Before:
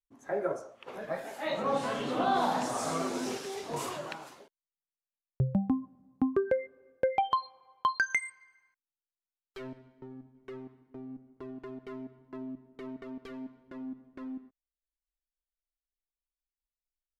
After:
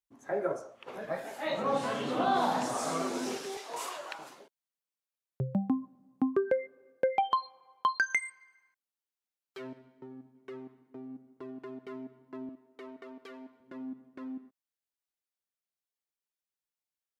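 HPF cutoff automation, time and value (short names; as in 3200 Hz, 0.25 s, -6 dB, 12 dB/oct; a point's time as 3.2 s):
51 Hz
from 2.75 s 160 Hz
from 3.57 s 630 Hz
from 4.19 s 160 Hz
from 12.49 s 380 Hz
from 13.6 s 140 Hz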